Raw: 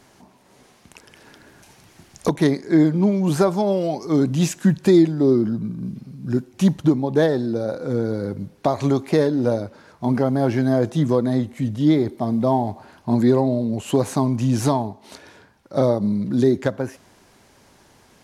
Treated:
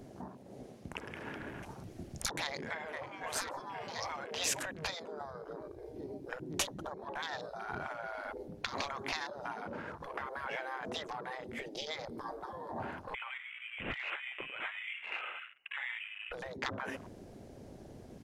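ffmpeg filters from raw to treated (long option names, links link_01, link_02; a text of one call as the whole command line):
ffmpeg -i in.wav -filter_complex "[0:a]asplit=2[link_01][link_02];[link_02]afade=type=in:start_time=2.3:duration=0.01,afade=type=out:start_time=3.13:duration=0.01,aecho=0:1:510|1020|1530|2040|2550|3060|3570|4080|4590:0.375837|0.244294|0.158791|0.103214|0.0670893|0.0436081|0.0283452|0.0184244|0.0119759[link_03];[link_01][link_03]amix=inputs=2:normalize=0,asettb=1/sr,asplit=3[link_04][link_05][link_06];[link_04]atrim=end=11.324[link_07];[link_05]atrim=start=11.32:end=12.33,asetpts=PTS-STARTPTS,afade=type=in:duration=0.004:curve=qsin,afade=type=out:start_time=1.006:duration=0.004:curve=qsin,equalizer=frequency=4900:width=5.7:gain=7.5[link_08];[link_06]atrim=start=12.326[link_09];[link_07][link_08]acrossfade=duration=0.004:curve1=hsin:curve2=qsin[link_10];[link_10][link_09]acrossfade=duration=0.004:curve1=qsin:curve2=hsin,asettb=1/sr,asplit=3[link_11][link_12][link_13];[link_11]atrim=end=13.144[link_14];[link_12]atrim=start=13.14:end=16.32,asetpts=PTS-STARTPTS,afade=type=in:duration=0.004:curve=qsin,afade=type=out:start_time=3.176:duration=0.004:curve=qsin,lowpass=frequency=2600:width_type=q:width=0.5098,lowpass=frequency=2600:width_type=q:width=0.6013,lowpass=frequency=2600:width_type=q:width=0.9,lowpass=frequency=2600:width_type=q:width=2.563,afreqshift=-3000[link_15];[link_13]atrim=start=16.316[link_16];[link_14][link_15]acrossfade=duration=0.004:curve1=hsin:curve2=qsin[link_17];[link_17][link_16]acrossfade=duration=0.004:curve1=qsin:curve2=hsin,acompressor=threshold=-23dB:ratio=12,afftfilt=real='re*lt(hypot(re,im),0.0501)':imag='im*lt(hypot(re,im),0.0501)':win_size=1024:overlap=0.75,afwtdn=0.00316,volume=5.5dB" out.wav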